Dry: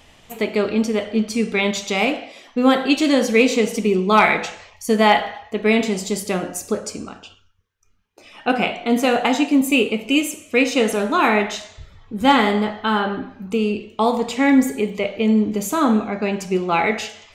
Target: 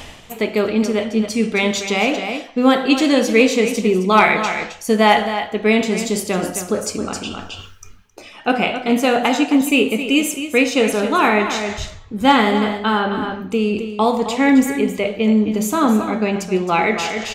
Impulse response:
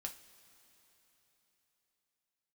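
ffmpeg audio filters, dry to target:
-af "aecho=1:1:266:0.282,areverse,acompressor=mode=upward:threshold=0.126:ratio=2.5,areverse,volume=1.19"

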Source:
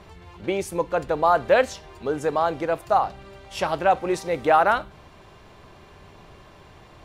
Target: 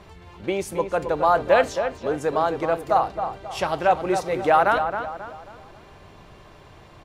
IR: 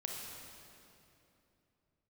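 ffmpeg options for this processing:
-filter_complex "[0:a]asplit=2[s0][s1];[s1]adelay=269,lowpass=f=2200:p=1,volume=0.422,asplit=2[s2][s3];[s3]adelay=269,lowpass=f=2200:p=1,volume=0.41,asplit=2[s4][s5];[s5]adelay=269,lowpass=f=2200:p=1,volume=0.41,asplit=2[s6][s7];[s7]adelay=269,lowpass=f=2200:p=1,volume=0.41,asplit=2[s8][s9];[s9]adelay=269,lowpass=f=2200:p=1,volume=0.41[s10];[s0][s2][s4][s6][s8][s10]amix=inputs=6:normalize=0"

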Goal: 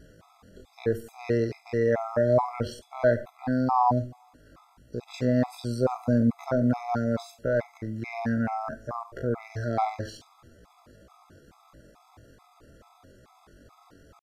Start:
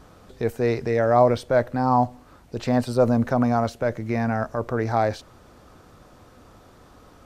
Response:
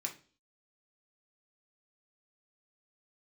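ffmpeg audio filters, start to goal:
-filter_complex "[0:a]atempo=0.51,asplit=2[s0][s1];[1:a]atrim=start_sample=2205,adelay=52[s2];[s1][s2]afir=irnorm=-1:irlink=0,volume=0.251[s3];[s0][s3]amix=inputs=2:normalize=0,afftfilt=real='re*gt(sin(2*PI*2.3*pts/sr)*(1-2*mod(floor(b*sr/1024/670),2)),0)':imag='im*gt(sin(2*PI*2.3*pts/sr)*(1-2*mod(floor(b*sr/1024/670),2)),0)':win_size=1024:overlap=0.75,volume=0.794"

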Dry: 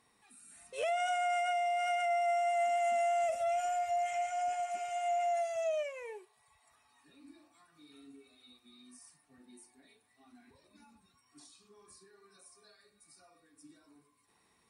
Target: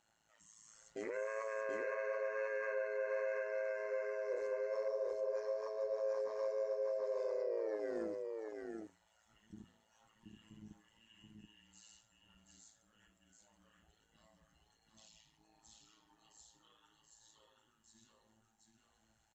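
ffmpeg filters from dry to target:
-filter_complex "[0:a]highpass=59,afwtdn=0.0112,asubboost=boost=6:cutoff=83,asetrate=33516,aresample=44100,equalizer=f=310:t=o:w=1.5:g=-7,acompressor=threshold=0.00501:ratio=6,alimiter=level_in=13.3:limit=0.0631:level=0:latency=1:release=13,volume=0.075,tremolo=f=110:d=0.857,bandreject=f=90.64:t=h:w=4,bandreject=f=181.28:t=h:w=4,asplit=2[s0][s1];[s1]aecho=0:1:730:0.668[s2];[s0][s2]amix=inputs=2:normalize=0,volume=5.31"

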